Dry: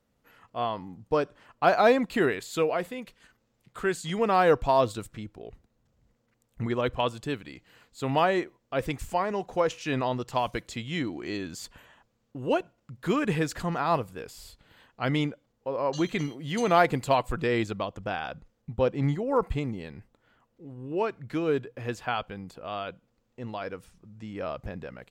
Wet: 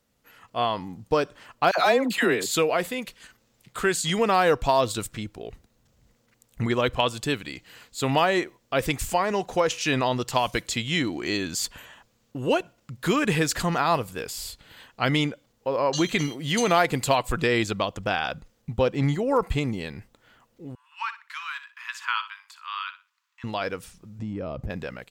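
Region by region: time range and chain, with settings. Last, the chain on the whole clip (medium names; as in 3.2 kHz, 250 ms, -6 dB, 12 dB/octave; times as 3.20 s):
1.71–2.51 s: high-pass 140 Hz + phase dispersion lows, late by 70 ms, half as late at 930 Hz
20.75–23.44 s: steep high-pass 950 Hz 96 dB/octave + treble shelf 3.8 kHz -11.5 dB + flutter echo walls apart 10.3 m, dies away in 0.29 s
24.19–24.70 s: tilt shelf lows +9.5 dB, about 700 Hz + compression 5:1, threshold -33 dBFS
whole clip: level rider gain up to 5 dB; treble shelf 2.2 kHz +9 dB; compression 2:1, threshold -20 dBFS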